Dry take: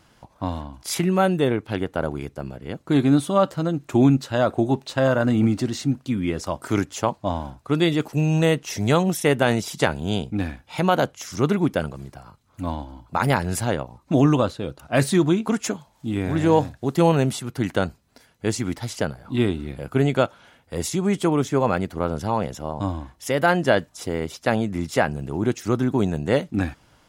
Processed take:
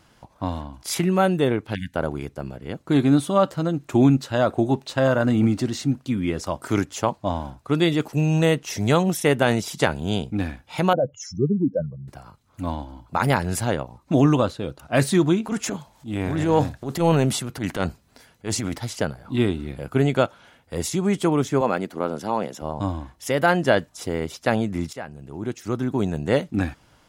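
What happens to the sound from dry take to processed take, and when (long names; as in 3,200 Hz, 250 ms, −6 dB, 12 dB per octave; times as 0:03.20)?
0:01.75–0:01.95: time-frequency box erased 270–1,500 Hz
0:10.93–0:12.08: expanding power law on the bin magnitudes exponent 3.2
0:15.43–0:18.78: transient designer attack −10 dB, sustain +5 dB
0:21.61–0:22.62: Chebyshev high-pass filter 240 Hz
0:24.93–0:26.36: fade in, from −17 dB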